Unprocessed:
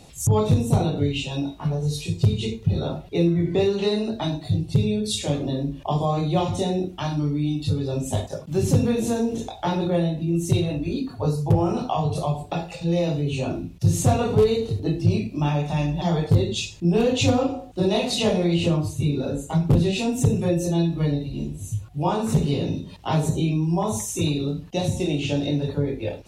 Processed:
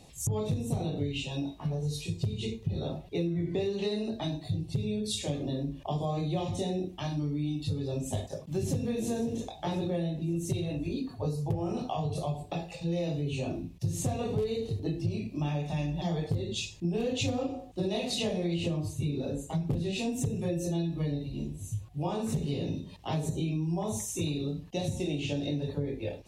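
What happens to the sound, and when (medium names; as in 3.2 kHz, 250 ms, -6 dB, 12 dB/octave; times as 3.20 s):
8.09–8.90 s: echo throw 540 ms, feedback 60%, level -16.5 dB
whole clip: band-stop 1.4 kHz, Q 6.2; dynamic bell 990 Hz, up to -6 dB, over -43 dBFS, Q 2.9; compression, threshold -20 dBFS; trim -6.5 dB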